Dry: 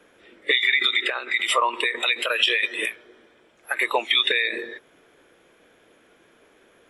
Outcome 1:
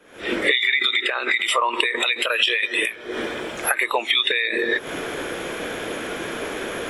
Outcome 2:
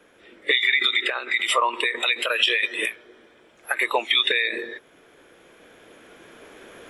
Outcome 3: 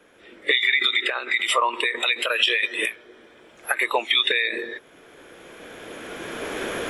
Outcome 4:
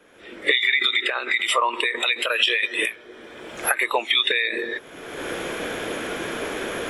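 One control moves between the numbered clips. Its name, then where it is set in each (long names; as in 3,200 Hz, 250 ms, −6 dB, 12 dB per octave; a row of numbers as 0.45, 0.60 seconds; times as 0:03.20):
camcorder AGC, rising by: 89, 5.3, 13, 34 dB per second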